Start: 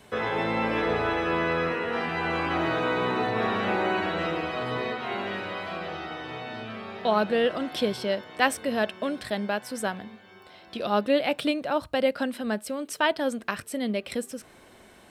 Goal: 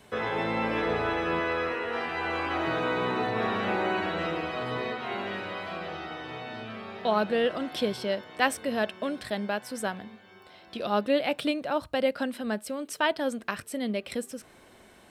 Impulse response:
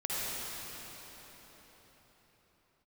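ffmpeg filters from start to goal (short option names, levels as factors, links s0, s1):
-filter_complex "[0:a]asettb=1/sr,asplit=3[s0][s1][s2];[s0]atrim=end=1.404[s3];[s1]atrim=start=1.4:end=2.67,asetpts=PTS-STARTPTS,afade=t=in:d=0.004:c=qsin,afade=t=out:st=1.266:d=0.004:c=qsin,equalizer=f=170:t=o:w=0.79:g=-11.5[s4];[s2]atrim=start=2.666[s5];[s3][s4]acrossfade=d=0.004:c1=hsin:c2=qsin[s6];[s6][s5]acrossfade=d=0.004:c1=qsin:c2=hsin,volume=0.794"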